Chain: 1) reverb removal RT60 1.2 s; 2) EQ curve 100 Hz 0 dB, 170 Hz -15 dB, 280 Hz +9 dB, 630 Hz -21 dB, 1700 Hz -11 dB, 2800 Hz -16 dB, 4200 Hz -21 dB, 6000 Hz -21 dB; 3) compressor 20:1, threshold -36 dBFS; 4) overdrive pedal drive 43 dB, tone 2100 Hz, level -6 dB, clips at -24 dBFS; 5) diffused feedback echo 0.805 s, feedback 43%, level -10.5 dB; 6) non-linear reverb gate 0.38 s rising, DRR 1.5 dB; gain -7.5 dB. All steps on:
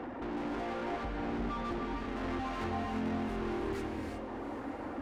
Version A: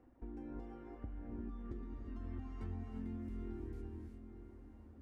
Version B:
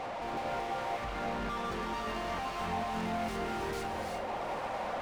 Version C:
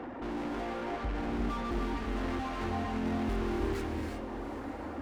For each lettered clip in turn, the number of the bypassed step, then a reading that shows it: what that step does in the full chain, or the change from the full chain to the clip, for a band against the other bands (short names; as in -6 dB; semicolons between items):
4, crest factor change +2.5 dB; 2, momentary loudness spread change -3 LU; 3, mean gain reduction 8.5 dB